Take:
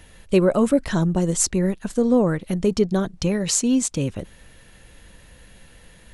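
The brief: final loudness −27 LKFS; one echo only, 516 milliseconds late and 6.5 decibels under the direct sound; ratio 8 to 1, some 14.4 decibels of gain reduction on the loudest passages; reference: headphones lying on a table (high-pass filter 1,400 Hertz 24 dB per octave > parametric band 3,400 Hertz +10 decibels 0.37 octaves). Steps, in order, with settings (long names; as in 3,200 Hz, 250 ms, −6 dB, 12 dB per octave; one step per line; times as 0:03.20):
downward compressor 8 to 1, threshold −28 dBFS
high-pass filter 1,400 Hz 24 dB per octave
parametric band 3,400 Hz +10 dB 0.37 octaves
single-tap delay 516 ms −6.5 dB
level +10 dB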